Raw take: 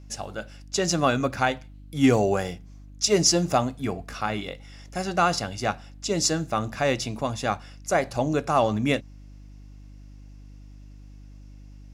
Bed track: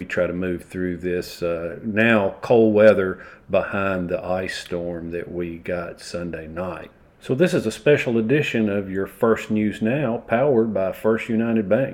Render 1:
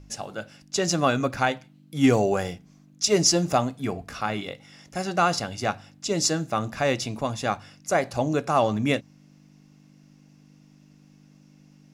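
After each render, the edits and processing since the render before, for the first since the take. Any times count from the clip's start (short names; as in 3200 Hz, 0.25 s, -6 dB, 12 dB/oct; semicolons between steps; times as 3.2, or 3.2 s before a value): de-hum 50 Hz, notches 2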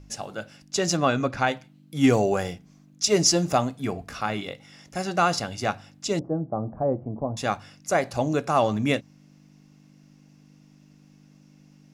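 0.97–1.48 air absorption 60 m; 6.19–7.37 inverse Chebyshev low-pass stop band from 3600 Hz, stop band 70 dB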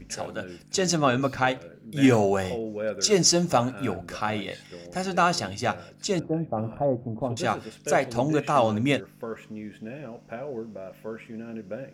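add bed track -17 dB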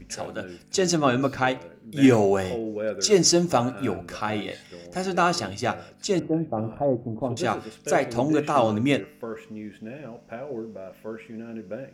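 de-hum 148.9 Hz, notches 19; dynamic EQ 340 Hz, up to +5 dB, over -40 dBFS, Q 2.2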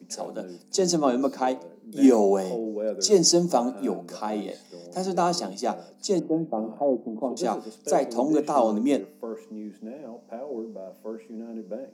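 steep high-pass 170 Hz 72 dB/oct; band shelf 2100 Hz -12.5 dB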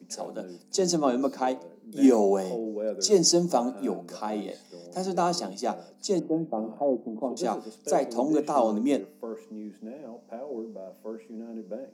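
gain -2 dB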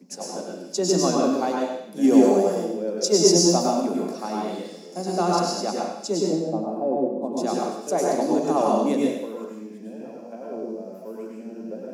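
narrowing echo 94 ms, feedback 48%, band-pass 3000 Hz, level -7 dB; plate-style reverb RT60 0.71 s, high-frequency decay 1×, pre-delay 90 ms, DRR -2.5 dB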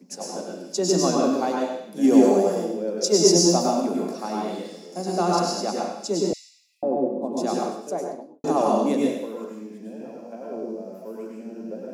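6.33–6.83 brick-wall FIR high-pass 1900 Hz; 7.58–8.44 studio fade out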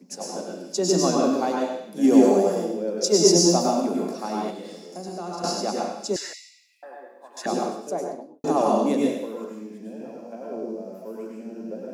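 4.5–5.44 compressor 3:1, threshold -33 dBFS; 6.16–7.46 resonant high-pass 1700 Hz, resonance Q 15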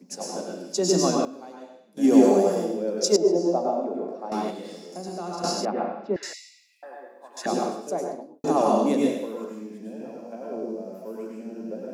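0.75–2.47 dip -17.5 dB, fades 0.50 s logarithmic; 3.16–4.32 band-pass 540 Hz, Q 1.4; 5.65–6.23 LPF 2300 Hz 24 dB/oct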